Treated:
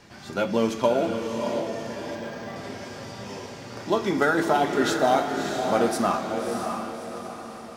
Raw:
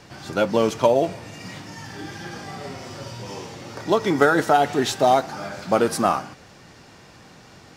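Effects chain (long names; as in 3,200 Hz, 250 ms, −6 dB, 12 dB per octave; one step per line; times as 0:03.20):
feedback delay with all-pass diffusion 624 ms, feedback 45%, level −5 dB
on a send at −5 dB: convolution reverb RT60 0.65 s, pre-delay 3 ms
0:02.15–0:02.56: on the sum: linearly interpolated sample-rate reduction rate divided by 4×
level −5 dB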